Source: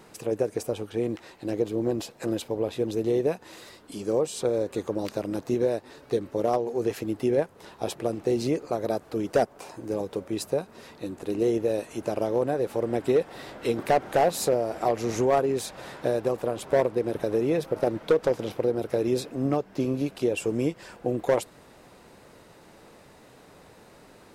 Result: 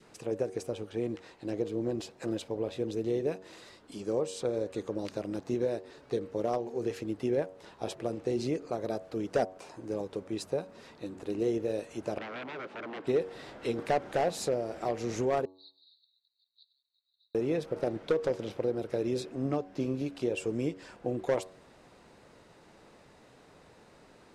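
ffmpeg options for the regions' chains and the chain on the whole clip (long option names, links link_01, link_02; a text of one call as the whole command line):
ffmpeg -i in.wav -filter_complex "[0:a]asettb=1/sr,asplit=3[link_01][link_02][link_03];[link_01]atrim=end=12.184[link_04];[link_02]atrim=start=12.18:end=13.07,asetpts=PTS-STARTPTS,afade=type=in:duration=0.004:curve=qsin,afade=type=out:start_time=0.886:duration=0.004:curve=qsin,aeval=exprs='0.0376*(abs(mod(val(0)/0.0376+3,4)-2)-1)':channel_layout=same,highpass=190,lowpass=3400[link_05];[link_03]atrim=start=13.066[link_06];[link_04][link_05]acrossfade=duration=0.004:curve1=hsin:curve2=qsin[link_07];[link_07][link_06]acrossfade=duration=0.004:curve1=qsin:curve2=hsin,asettb=1/sr,asplit=3[link_08][link_09][link_10];[link_08]atrim=end=15.454[link_11];[link_09]atrim=start=15.45:end=17.35,asetpts=PTS-STARTPTS,afade=type=in:duration=0.004:curve=qsin,afade=type=out:start_time=1.896:duration=0.004:curve=qsin,acompressor=threshold=-37dB:ratio=4:attack=3.2:release=140:knee=1:detection=peak,asuperpass=centerf=4100:order=8:qfactor=5.2[link_12];[link_10]atrim=start=17.346[link_13];[link_11][link_12]acrossfade=duration=0.004:curve1=hsin:curve2=qsin[link_14];[link_14][link_13]acrossfade=duration=0.004:curve1=qsin:curve2=hsin,lowpass=8100,bandreject=frequency=93.66:width_type=h:width=4,bandreject=frequency=187.32:width_type=h:width=4,bandreject=frequency=280.98:width_type=h:width=4,bandreject=frequency=374.64:width_type=h:width=4,bandreject=frequency=468.3:width_type=h:width=4,bandreject=frequency=561.96:width_type=h:width=4,bandreject=frequency=655.62:width_type=h:width=4,bandreject=frequency=749.28:width_type=h:width=4,bandreject=frequency=842.94:width_type=h:width=4,bandreject=frequency=936.6:width_type=h:width=4,bandreject=frequency=1030.26:width_type=h:width=4,bandreject=frequency=1123.92:width_type=h:width=4,adynamicequalizer=threshold=0.0112:dfrequency=880:dqfactor=1.3:tfrequency=880:tqfactor=1.3:attack=5:release=100:ratio=0.375:range=2.5:mode=cutabove:tftype=bell,volume=-5dB" out.wav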